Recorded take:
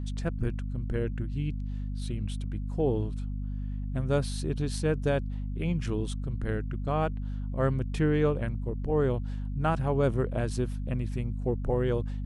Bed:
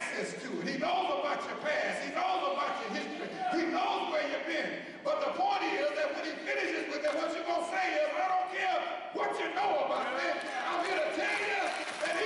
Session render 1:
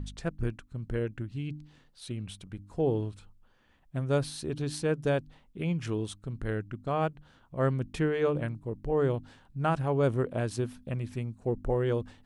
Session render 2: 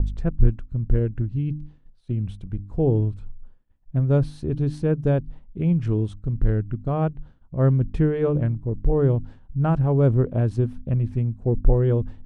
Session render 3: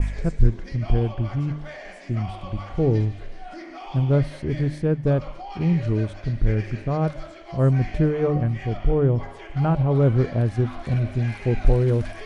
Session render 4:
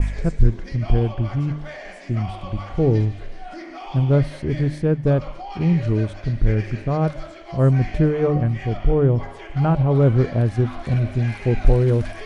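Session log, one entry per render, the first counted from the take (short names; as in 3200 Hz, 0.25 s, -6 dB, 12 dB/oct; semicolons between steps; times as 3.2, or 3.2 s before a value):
de-hum 50 Hz, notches 6
tilt -4 dB/oct; expander -36 dBFS
add bed -7.5 dB
gain +2.5 dB; limiter -3 dBFS, peak gain reduction 1.5 dB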